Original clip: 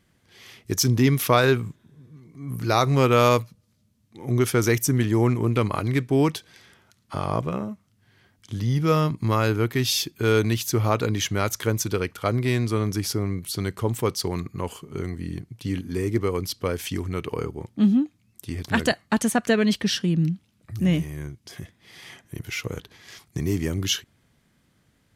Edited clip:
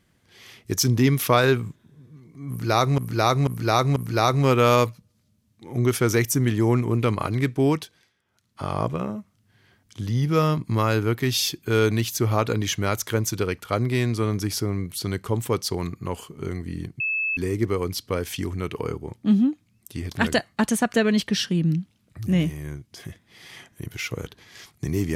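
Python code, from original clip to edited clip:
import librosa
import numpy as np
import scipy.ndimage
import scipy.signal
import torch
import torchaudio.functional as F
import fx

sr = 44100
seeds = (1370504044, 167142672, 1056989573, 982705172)

y = fx.edit(x, sr, fx.repeat(start_s=2.49, length_s=0.49, count=4),
    fx.fade_down_up(start_s=6.18, length_s=1.06, db=-19.5, fade_s=0.47),
    fx.bleep(start_s=15.53, length_s=0.37, hz=2610.0, db=-22.0), tone=tone)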